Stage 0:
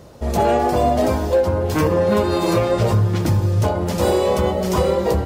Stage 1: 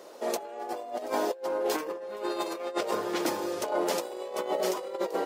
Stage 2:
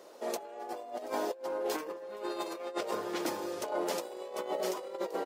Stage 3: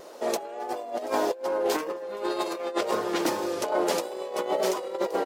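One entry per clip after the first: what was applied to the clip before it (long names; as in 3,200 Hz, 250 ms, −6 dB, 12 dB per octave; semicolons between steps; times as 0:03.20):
high-pass filter 340 Hz 24 dB per octave; compressor whose output falls as the input rises −24 dBFS, ratio −0.5; level −6.5 dB
slap from a distant wall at 46 metres, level −28 dB; level −5 dB
tape wow and flutter 29 cents; highs frequency-modulated by the lows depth 0.1 ms; level +8 dB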